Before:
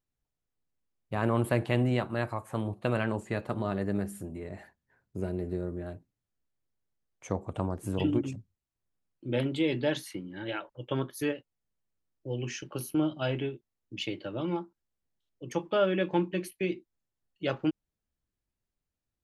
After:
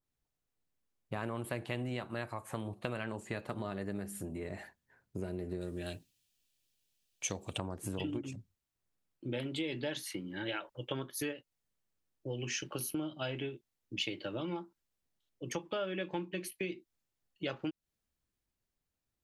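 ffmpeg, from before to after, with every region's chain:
-filter_complex "[0:a]asettb=1/sr,asplit=3[s0][s1][s2];[s0]atrim=end=5.614[s3];[s1]atrim=start=5.61:end=7.58,asetpts=PTS-STARTPTS,afade=t=in:d=0.004:c=qsin,afade=t=out:st=1.966:d=0.004:c=qsin,highshelf=f=1900:t=q:w=1.5:g=12,bandreject=f=2100:w=8.3[s4];[s2]atrim=start=7.576[s5];[s3][s4]acrossfade=d=0.004:c1=hsin:c2=qsin[s6];[s6][s5]acrossfade=d=0.004:c1=qsin:c2=hsin,lowshelf=f=150:g=-3,acompressor=threshold=0.0141:ratio=4,adynamicequalizer=threshold=0.00224:dfrequency=1700:dqfactor=0.7:tfrequency=1700:tqfactor=0.7:attack=5:release=100:ratio=0.375:range=2.5:mode=boostabove:tftype=highshelf,volume=1.12"

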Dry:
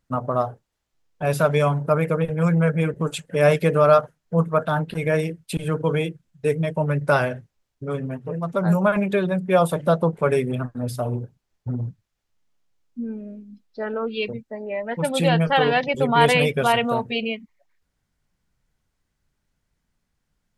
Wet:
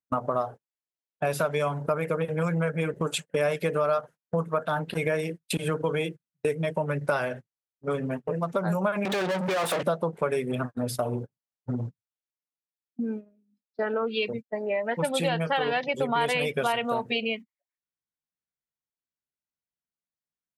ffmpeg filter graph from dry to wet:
-filter_complex "[0:a]asettb=1/sr,asplit=3[s0][s1][s2];[s0]atrim=end=9.054[s3];[s1]atrim=start=9.05:end=9.83,asetpts=PTS-STARTPTS,afade=t=in:d=0.004:c=qsin,afade=t=out:st=0.776:d=0.004:c=qsin,acompressor=threshold=0.0398:ratio=8:attack=3.2:release=140:knee=1:detection=peak,asplit=2[s4][s5];[s5]highpass=f=720:p=1,volume=70.8,asoftclip=type=tanh:threshold=0.126[s6];[s4][s6]amix=inputs=2:normalize=0,lowpass=f=2900:p=1,volume=0.501,highpass=120[s7];[s2]atrim=start=9.826[s8];[s3][s7]acrossfade=d=0.004:c1=hsin:c2=qsin[s9];[s9][s8]acrossfade=d=0.004:c1=qsin:c2=hsin,highpass=f=290:p=1,agate=range=0.0447:threshold=0.0178:ratio=16:detection=peak,acompressor=threshold=0.0355:ratio=4,volume=1.68"

